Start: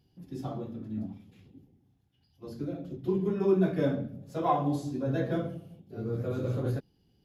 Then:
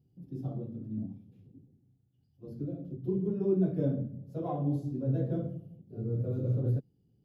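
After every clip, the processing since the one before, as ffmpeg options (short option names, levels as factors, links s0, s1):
-af "equalizer=f=125:t=o:w=1:g=11,equalizer=f=250:t=o:w=1:g=4,equalizer=f=500:t=o:w=1:g=5,equalizer=f=1000:t=o:w=1:g=-7,equalizer=f=2000:t=o:w=1:g=-10,equalizer=f=4000:t=o:w=1:g=-5,equalizer=f=8000:t=o:w=1:g=-10,volume=0.376"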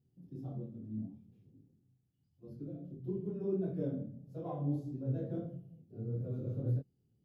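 -af "flanger=delay=22.5:depth=5.3:speed=1.6,volume=0.708"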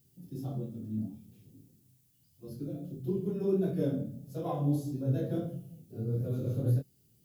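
-af "crystalizer=i=6:c=0,volume=1.88"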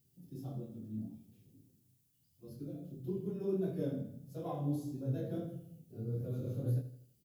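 -af "aecho=1:1:81|162|243|324:0.224|0.101|0.0453|0.0204,volume=0.501"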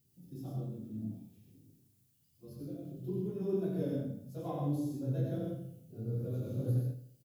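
-af "aecho=1:1:90.38|128.3:0.631|0.501"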